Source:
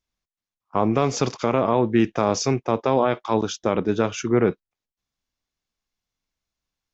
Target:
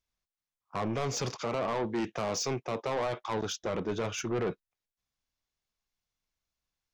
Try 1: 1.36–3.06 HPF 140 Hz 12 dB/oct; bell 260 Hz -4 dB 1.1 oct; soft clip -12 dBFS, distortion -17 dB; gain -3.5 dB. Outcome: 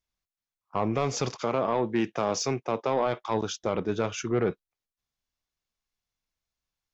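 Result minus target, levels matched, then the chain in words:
soft clip: distortion -11 dB
1.36–3.06 HPF 140 Hz 12 dB/oct; bell 260 Hz -4 dB 1.1 oct; soft clip -23 dBFS, distortion -6 dB; gain -3.5 dB

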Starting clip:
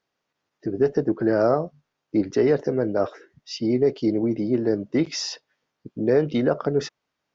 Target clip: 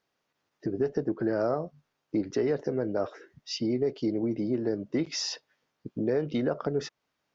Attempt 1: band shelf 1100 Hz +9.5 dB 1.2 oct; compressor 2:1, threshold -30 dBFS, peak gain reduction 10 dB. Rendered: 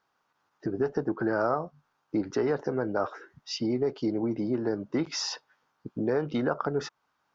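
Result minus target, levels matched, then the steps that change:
1000 Hz band +6.0 dB
remove: band shelf 1100 Hz +9.5 dB 1.2 oct

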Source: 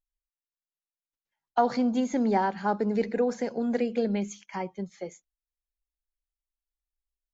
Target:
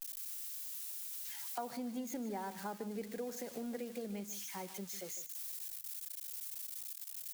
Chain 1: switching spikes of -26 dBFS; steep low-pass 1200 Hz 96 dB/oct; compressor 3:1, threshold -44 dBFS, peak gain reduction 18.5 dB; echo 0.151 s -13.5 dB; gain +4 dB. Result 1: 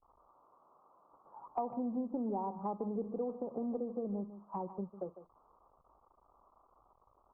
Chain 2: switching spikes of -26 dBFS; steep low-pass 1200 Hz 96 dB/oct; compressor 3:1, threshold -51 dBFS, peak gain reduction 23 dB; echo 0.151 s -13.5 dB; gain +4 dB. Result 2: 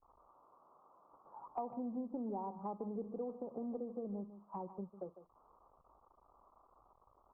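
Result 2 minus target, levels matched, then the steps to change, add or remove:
1000 Hz band +3.0 dB
remove: steep low-pass 1200 Hz 96 dB/oct

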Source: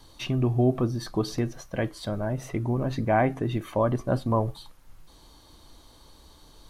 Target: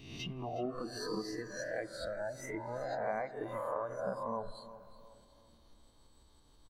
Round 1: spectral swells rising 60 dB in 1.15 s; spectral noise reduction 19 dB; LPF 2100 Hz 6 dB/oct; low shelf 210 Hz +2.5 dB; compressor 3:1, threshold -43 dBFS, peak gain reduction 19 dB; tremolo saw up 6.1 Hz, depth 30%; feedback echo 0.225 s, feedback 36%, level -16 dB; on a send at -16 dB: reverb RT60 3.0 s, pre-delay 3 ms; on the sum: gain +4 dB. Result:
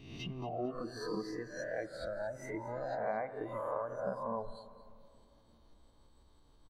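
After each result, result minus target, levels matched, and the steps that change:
echo 0.139 s early; 8000 Hz band -6.0 dB
change: feedback echo 0.364 s, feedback 36%, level -16 dB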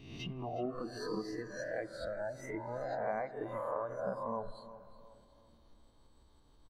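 8000 Hz band -6.0 dB
change: LPF 6100 Hz 6 dB/oct

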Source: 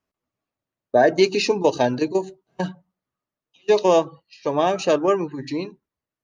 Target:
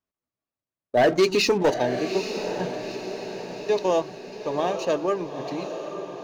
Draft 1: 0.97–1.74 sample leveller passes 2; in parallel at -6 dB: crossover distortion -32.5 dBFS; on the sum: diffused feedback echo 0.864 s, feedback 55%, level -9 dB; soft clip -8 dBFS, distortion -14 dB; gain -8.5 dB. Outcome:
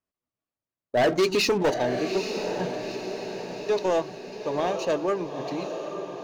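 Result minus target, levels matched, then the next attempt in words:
soft clip: distortion +12 dB
0.97–1.74 sample leveller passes 2; in parallel at -6 dB: crossover distortion -32.5 dBFS; on the sum: diffused feedback echo 0.864 s, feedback 55%, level -9 dB; soft clip -0.5 dBFS, distortion -26 dB; gain -8.5 dB

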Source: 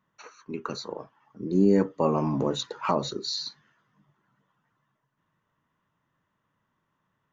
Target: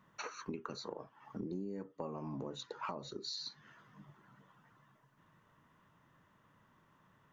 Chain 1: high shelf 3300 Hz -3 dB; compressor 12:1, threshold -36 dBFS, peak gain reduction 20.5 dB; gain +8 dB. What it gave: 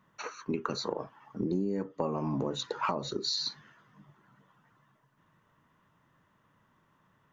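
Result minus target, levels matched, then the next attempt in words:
compressor: peak gain reduction -10.5 dB
high shelf 3300 Hz -3 dB; compressor 12:1, threshold -47.5 dBFS, peak gain reduction 31.5 dB; gain +8 dB

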